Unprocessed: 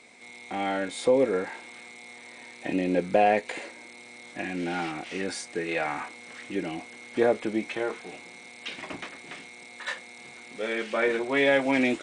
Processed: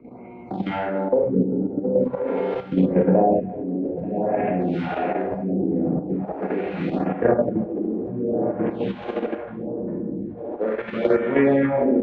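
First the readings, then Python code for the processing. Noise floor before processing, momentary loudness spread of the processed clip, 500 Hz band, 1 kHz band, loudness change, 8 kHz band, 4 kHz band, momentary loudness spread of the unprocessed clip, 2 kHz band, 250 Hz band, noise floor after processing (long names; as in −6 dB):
−47 dBFS, 10 LU, +6.0 dB, +3.0 dB, +5.0 dB, below −25 dB, can't be measured, 21 LU, −4.5 dB, +9.0 dB, −37 dBFS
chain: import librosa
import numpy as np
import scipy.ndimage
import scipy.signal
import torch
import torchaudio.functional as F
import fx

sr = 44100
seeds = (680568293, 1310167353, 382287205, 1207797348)

y = fx.wiener(x, sr, points=25)
y = fx.high_shelf(y, sr, hz=2100.0, db=-5.5)
y = fx.doubler(y, sr, ms=16.0, db=-9.5)
y = fx.echo_diffused(y, sr, ms=986, feedback_pct=59, wet_db=-5.0)
y = fx.step_gate(y, sr, bpm=160, pattern='xxxx.x.xxxx.', floor_db=-60.0, edge_ms=4.5)
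y = scipy.signal.sosfilt(scipy.signal.butter(2, 63.0, 'highpass', fs=sr, output='sos'), y)
y = fx.rev_schroeder(y, sr, rt60_s=1.4, comb_ms=32, drr_db=-4.5)
y = fx.filter_lfo_lowpass(y, sr, shape='sine', hz=0.47, low_hz=280.0, high_hz=3900.0, q=1.4)
y = fx.low_shelf(y, sr, hz=260.0, db=11.5)
y = fx.level_steps(y, sr, step_db=9)
y = fx.phaser_stages(y, sr, stages=2, low_hz=110.0, high_hz=5000.0, hz=0.73, feedback_pct=5)
y = fx.band_squash(y, sr, depth_pct=40)
y = y * 10.0 ** (4.5 / 20.0)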